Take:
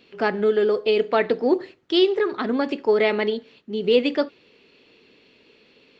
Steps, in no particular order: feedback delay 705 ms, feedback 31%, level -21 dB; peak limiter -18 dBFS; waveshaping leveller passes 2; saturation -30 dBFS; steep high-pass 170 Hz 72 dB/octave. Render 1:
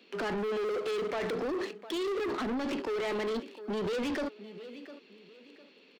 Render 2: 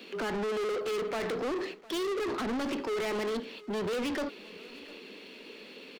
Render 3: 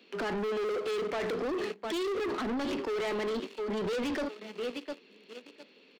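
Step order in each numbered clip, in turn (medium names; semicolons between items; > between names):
waveshaping leveller > steep high-pass > peak limiter > feedback delay > saturation; peak limiter > steep high-pass > saturation > waveshaping leveller > feedback delay; feedback delay > waveshaping leveller > peak limiter > steep high-pass > saturation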